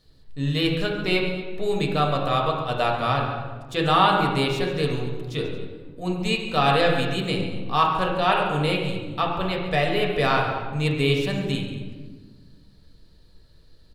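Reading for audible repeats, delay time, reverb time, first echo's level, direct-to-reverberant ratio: 2, 138 ms, 1.4 s, -12.5 dB, -1.0 dB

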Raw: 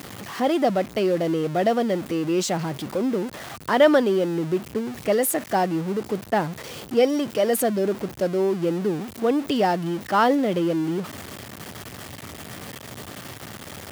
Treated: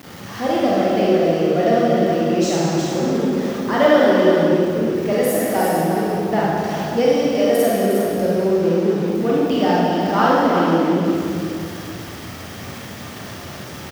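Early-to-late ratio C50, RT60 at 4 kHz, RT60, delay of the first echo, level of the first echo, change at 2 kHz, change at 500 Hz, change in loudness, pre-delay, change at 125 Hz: -4.5 dB, 1.7 s, 2.1 s, 359 ms, -6.0 dB, +5.0 dB, +5.5 dB, +5.5 dB, 29 ms, +6.5 dB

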